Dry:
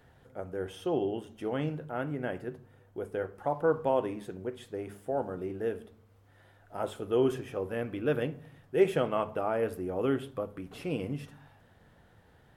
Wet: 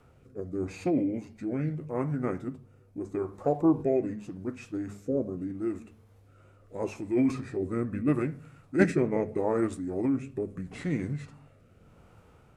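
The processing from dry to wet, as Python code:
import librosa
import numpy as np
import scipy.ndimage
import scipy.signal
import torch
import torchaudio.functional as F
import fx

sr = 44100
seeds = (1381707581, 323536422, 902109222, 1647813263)

y = fx.formant_shift(x, sr, semitones=-5)
y = fx.rotary(y, sr, hz=0.8)
y = y * librosa.db_to_amplitude(4.5)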